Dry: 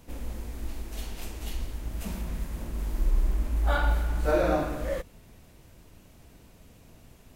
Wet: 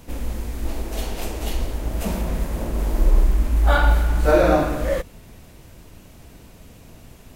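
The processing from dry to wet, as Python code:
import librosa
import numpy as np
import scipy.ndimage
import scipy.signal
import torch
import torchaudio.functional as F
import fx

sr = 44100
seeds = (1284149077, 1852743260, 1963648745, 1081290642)

y = fx.peak_eq(x, sr, hz=560.0, db=7.5, octaves=1.6, at=(0.65, 3.24))
y = y * 10.0 ** (8.5 / 20.0)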